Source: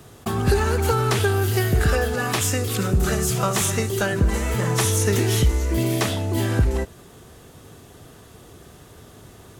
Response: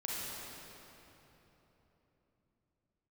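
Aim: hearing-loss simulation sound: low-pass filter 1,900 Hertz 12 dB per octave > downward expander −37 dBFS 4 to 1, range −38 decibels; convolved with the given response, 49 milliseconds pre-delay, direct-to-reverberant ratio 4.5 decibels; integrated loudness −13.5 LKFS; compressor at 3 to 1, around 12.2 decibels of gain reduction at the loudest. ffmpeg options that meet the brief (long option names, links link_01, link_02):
-filter_complex "[0:a]acompressor=threshold=-31dB:ratio=3,asplit=2[link_01][link_02];[1:a]atrim=start_sample=2205,adelay=49[link_03];[link_02][link_03]afir=irnorm=-1:irlink=0,volume=-8dB[link_04];[link_01][link_04]amix=inputs=2:normalize=0,lowpass=1900,agate=range=-38dB:threshold=-37dB:ratio=4,volume=17.5dB"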